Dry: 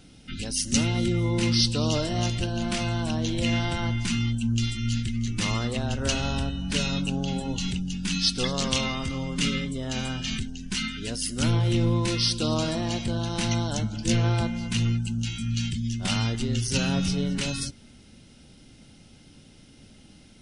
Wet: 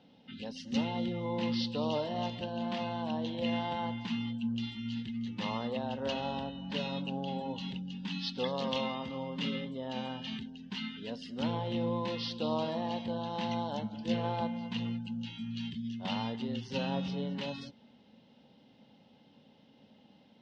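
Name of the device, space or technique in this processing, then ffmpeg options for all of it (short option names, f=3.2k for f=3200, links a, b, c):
kitchen radio: -af "highpass=210,equalizer=f=220:t=q:w=4:g=4,equalizer=f=340:t=q:w=4:g=-8,equalizer=f=520:t=q:w=4:g=6,equalizer=f=890:t=q:w=4:g=9,equalizer=f=1.4k:t=q:w=4:g=-9,equalizer=f=2.3k:t=q:w=4:g=-8,lowpass=f=3.6k:w=0.5412,lowpass=f=3.6k:w=1.3066,volume=-6dB"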